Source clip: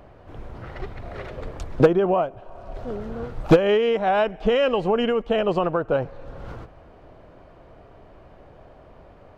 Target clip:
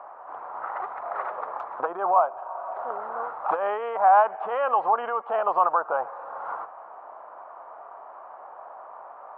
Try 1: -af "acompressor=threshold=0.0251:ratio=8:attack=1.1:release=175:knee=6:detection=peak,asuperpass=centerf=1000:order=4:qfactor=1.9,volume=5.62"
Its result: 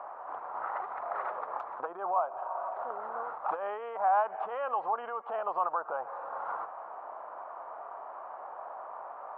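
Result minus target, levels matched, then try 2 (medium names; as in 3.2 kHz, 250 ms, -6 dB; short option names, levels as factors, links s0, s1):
compression: peak gain reduction +9 dB
-af "acompressor=threshold=0.0841:ratio=8:attack=1.1:release=175:knee=6:detection=peak,asuperpass=centerf=1000:order=4:qfactor=1.9,volume=5.62"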